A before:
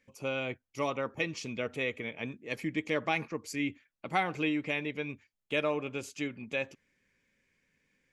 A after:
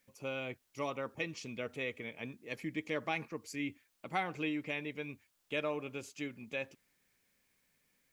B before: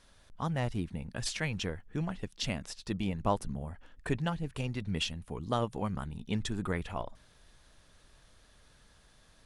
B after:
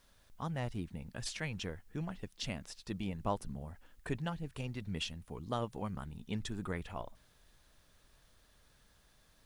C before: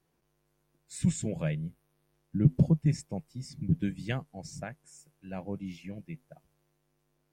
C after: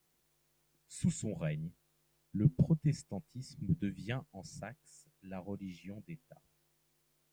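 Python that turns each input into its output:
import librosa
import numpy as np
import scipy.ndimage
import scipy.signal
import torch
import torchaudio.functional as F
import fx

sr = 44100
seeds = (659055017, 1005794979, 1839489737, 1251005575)

y = fx.quant_dither(x, sr, seeds[0], bits=12, dither='triangular')
y = F.gain(torch.from_numpy(y), -5.5).numpy()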